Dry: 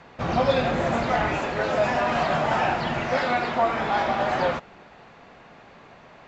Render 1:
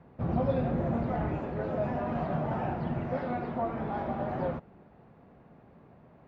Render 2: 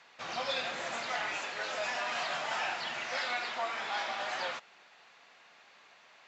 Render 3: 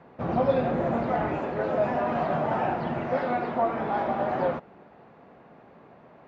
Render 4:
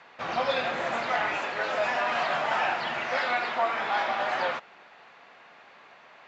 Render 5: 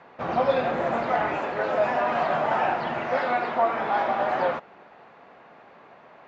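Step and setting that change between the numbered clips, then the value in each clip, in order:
band-pass, frequency: 110, 6900, 300, 2300, 780 Hz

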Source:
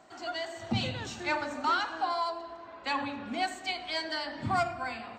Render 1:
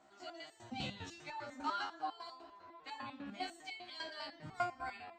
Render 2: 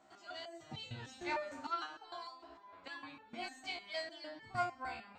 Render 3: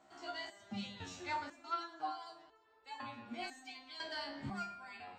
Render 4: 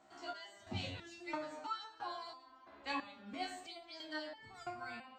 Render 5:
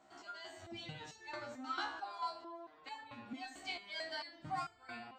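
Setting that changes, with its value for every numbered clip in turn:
stepped resonator, rate: 10, 6.6, 2, 3, 4.5 Hz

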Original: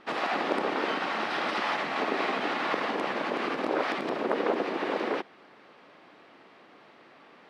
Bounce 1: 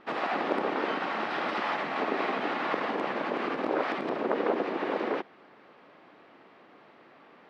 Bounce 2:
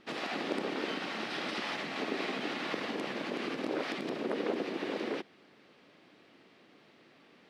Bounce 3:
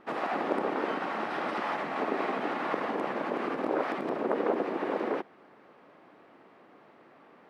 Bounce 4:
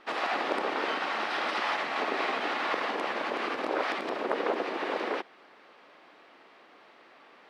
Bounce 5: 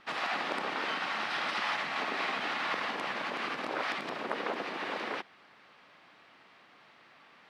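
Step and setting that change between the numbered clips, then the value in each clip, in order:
bell, frequency: 13000, 990, 4300, 120, 370 Hz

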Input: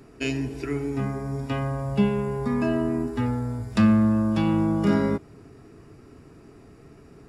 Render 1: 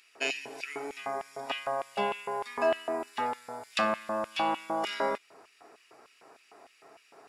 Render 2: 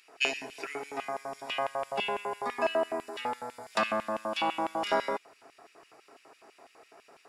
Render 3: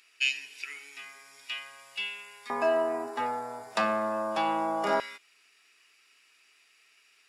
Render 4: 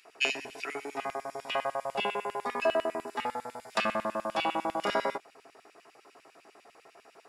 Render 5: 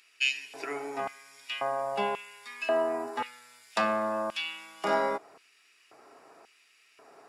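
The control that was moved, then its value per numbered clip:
LFO high-pass, rate: 3.3, 6, 0.2, 10, 0.93 Hz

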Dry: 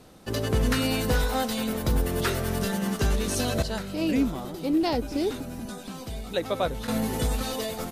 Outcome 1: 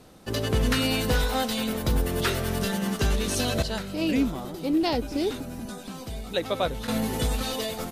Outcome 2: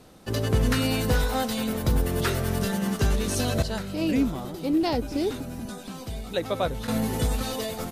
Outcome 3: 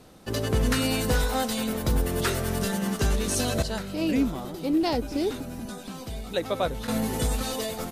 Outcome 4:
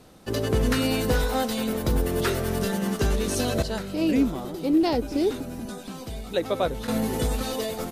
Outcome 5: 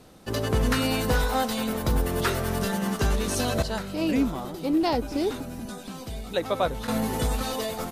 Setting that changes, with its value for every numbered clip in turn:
dynamic EQ, frequency: 3200, 110, 8100, 380, 1000 Hz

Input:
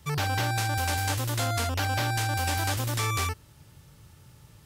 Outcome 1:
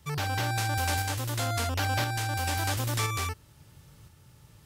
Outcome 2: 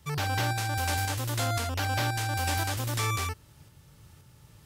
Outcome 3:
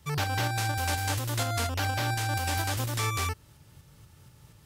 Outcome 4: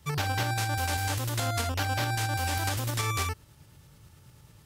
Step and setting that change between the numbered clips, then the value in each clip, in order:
tremolo, rate: 0.98, 1.9, 4.2, 9.3 Hz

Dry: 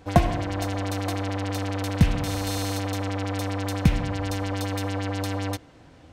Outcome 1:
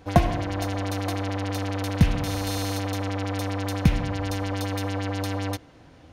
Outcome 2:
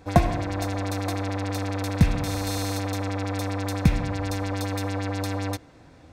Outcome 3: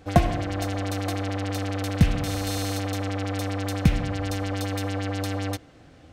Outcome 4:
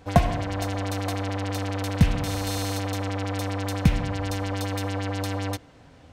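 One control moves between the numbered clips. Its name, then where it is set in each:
notch, frequency: 7800, 3000, 960, 330 Hz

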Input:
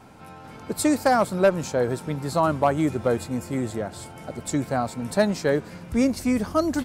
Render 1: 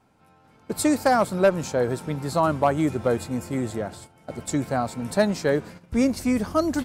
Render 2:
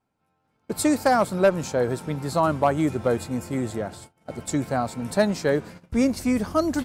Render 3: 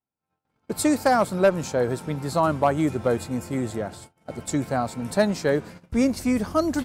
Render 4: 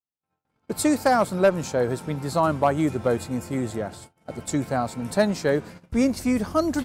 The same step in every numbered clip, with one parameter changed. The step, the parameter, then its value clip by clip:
gate, range: -14, -29, -45, -57 dB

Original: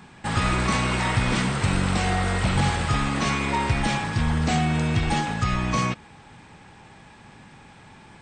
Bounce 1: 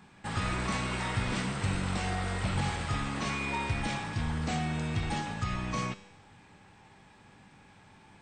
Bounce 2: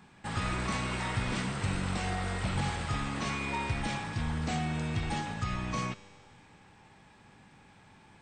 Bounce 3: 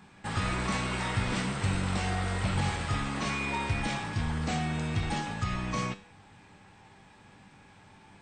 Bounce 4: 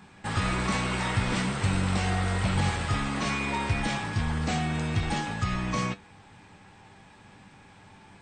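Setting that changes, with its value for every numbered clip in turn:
resonator, decay: 1, 2.2, 0.46, 0.15 s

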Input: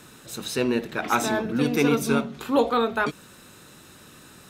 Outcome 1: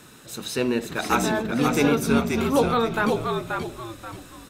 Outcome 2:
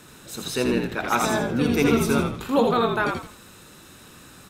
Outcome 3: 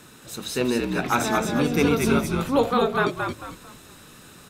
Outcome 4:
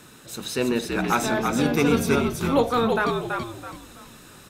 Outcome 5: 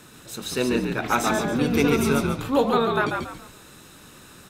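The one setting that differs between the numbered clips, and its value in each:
frequency-shifting echo, time: 531, 82, 223, 330, 140 ms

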